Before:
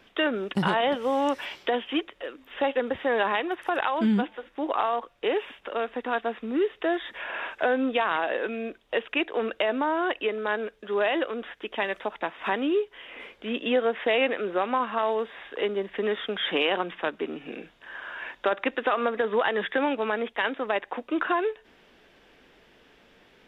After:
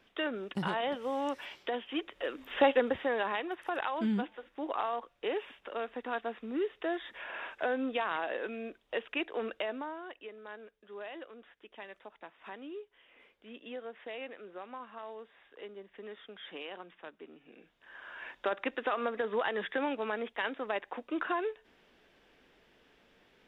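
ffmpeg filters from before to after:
-af "volume=5.31,afade=t=in:st=1.95:d=0.48:silence=0.251189,afade=t=out:st=2.43:d=0.73:silence=0.281838,afade=t=out:st=9.49:d=0.53:silence=0.281838,afade=t=in:st=17.54:d=0.75:silence=0.266073"

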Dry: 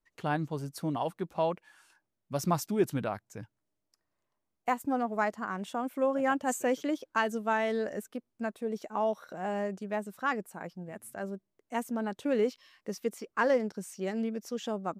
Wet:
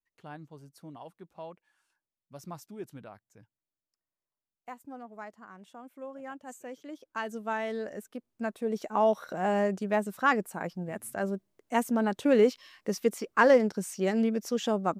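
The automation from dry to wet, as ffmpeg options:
-af "volume=2,afade=t=in:st=6.83:d=0.62:silence=0.298538,afade=t=in:st=8.04:d=1.15:silence=0.334965"

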